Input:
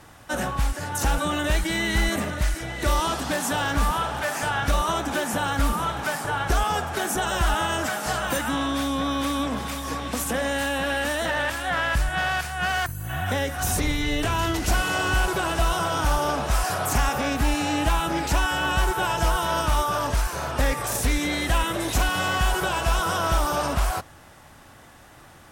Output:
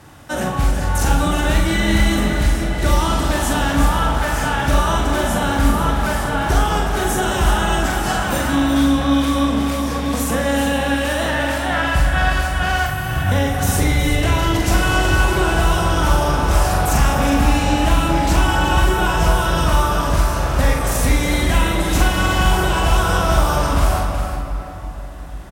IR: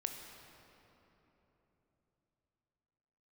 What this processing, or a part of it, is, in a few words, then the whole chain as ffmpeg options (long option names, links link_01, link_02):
cave: -filter_complex "[0:a]highpass=48,lowshelf=frequency=250:gain=6,aecho=1:1:365:0.335[link_01];[1:a]atrim=start_sample=2205[link_02];[link_01][link_02]afir=irnorm=-1:irlink=0,asplit=2[link_03][link_04];[link_04]adelay=43,volume=-5dB[link_05];[link_03][link_05]amix=inputs=2:normalize=0,volume=3.5dB"